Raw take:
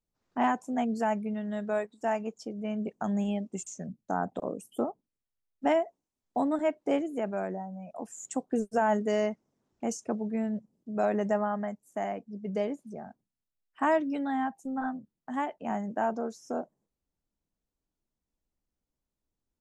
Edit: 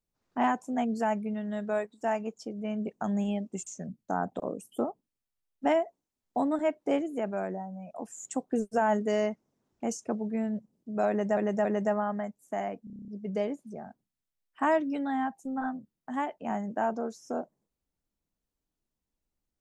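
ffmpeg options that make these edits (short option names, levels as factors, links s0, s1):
-filter_complex "[0:a]asplit=11[s0][s1][s2][s3][s4][s5][s6][s7][s8][s9][s10];[s0]atrim=end=11.372[s11];[s1]atrim=start=11.088:end=11.372[s12];[s2]atrim=start=11.088:end=12.312[s13];[s3]atrim=start=12.278:end=12.312[s14];[s4]atrim=start=12.278:end=12.312[s15];[s5]atrim=start=12.278:end=12.312[s16];[s6]atrim=start=12.278:end=12.312[s17];[s7]atrim=start=12.278:end=12.312[s18];[s8]atrim=start=12.278:end=12.312[s19];[s9]atrim=start=12.278:end=12.312[s20];[s10]atrim=start=12.278[s21];[s11][s12]acrossfade=d=0.004:c1=hsin:c2=hsin[s22];[s22][s13]acrossfade=d=0.004:c1=hsin:c2=hsin[s23];[s23][s14]acrossfade=d=0.004:c1=hsin:c2=hsin[s24];[s24][s15]acrossfade=d=0.004:c1=hsin:c2=hsin[s25];[s25][s16]acrossfade=d=0.004:c1=hsin:c2=hsin[s26];[s26][s17]acrossfade=d=0.004:c1=hsin:c2=hsin[s27];[s27][s18]acrossfade=d=0.004:c1=hsin:c2=hsin[s28];[s28][s19]acrossfade=d=0.004:c1=hsin:c2=hsin[s29];[s29][s20]acrossfade=d=0.004:c1=hsin:c2=hsin[s30];[s30][s21]acrossfade=d=0.004:c1=hsin:c2=hsin"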